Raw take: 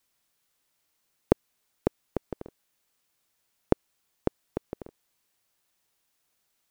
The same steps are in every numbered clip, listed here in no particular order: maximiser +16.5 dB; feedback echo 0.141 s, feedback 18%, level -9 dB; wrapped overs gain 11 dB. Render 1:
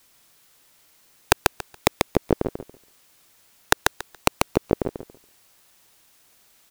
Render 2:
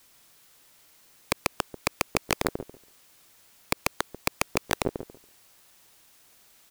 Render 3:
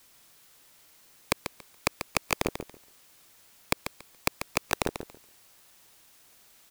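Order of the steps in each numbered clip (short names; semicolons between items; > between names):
wrapped overs > feedback echo > maximiser; feedback echo > maximiser > wrapped overs; maximiser > wrapped overs > feedback echo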